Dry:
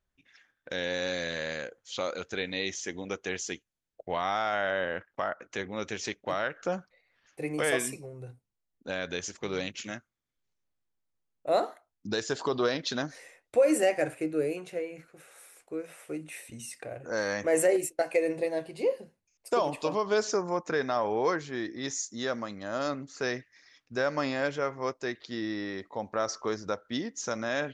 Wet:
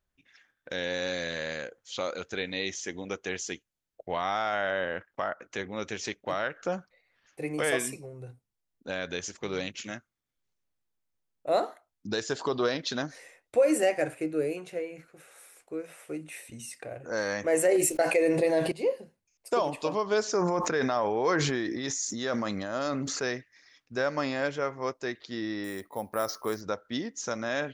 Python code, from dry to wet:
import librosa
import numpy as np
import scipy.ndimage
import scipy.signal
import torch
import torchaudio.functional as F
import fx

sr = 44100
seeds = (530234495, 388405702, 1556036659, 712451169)

y = fx.env_flatten(x, sr, amount_pct=70, at=(17.71, 18.72))
y = fx.sustainer(y, sr, db_per_s=20.0, at=(20.26, 23.24))
y = fx.resample_bad(y, sr, factor=4, down='none', up='hold', at=(25.64, 26.61))